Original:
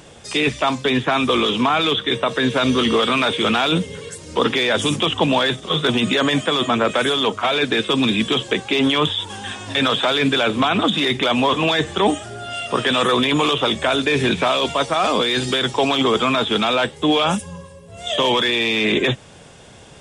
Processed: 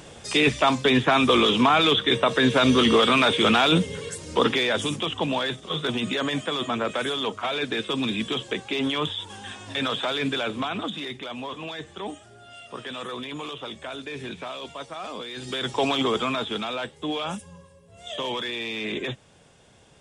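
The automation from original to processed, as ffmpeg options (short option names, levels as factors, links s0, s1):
-af "volume=3.55,afade=t=out:st=4.19:d=0.75:silence=0.421697,afade=t=out:st=10.28:d=0.96:silence=0.375837,afade=t=in:st=15.36:d=0.48:silence=0.251189,afade=t=out:st=15.84:d=0.85:silence=0.446684"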